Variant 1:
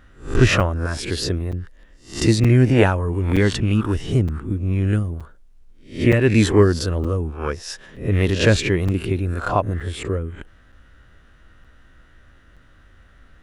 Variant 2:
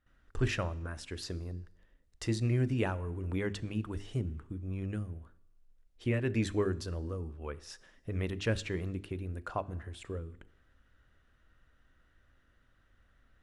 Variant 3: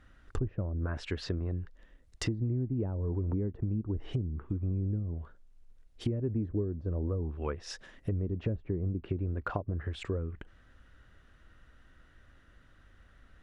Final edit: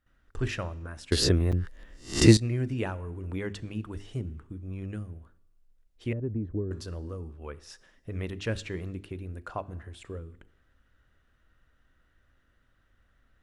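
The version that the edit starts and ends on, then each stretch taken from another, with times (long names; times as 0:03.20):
2
0:01.12–0:02.37: punch in from 1
0:06.13–0:06.71: punch in from 3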